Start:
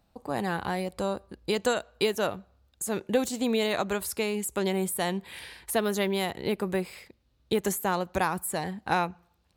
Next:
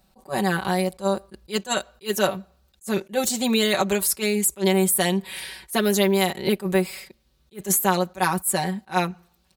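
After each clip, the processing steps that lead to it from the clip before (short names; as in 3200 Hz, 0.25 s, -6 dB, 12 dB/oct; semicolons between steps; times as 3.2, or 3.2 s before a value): high shelf 3900 Hz +7.5 dB; comb 5.3 ms, depth 88%; attack slew limiter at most 350 dB/s; gain +3 dB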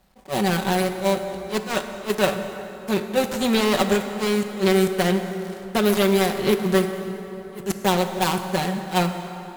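switching dead time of 0.22 ms; plate-style reverb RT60 3.7 s, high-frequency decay 0.6×, DRR 7 dB; gain +2 dB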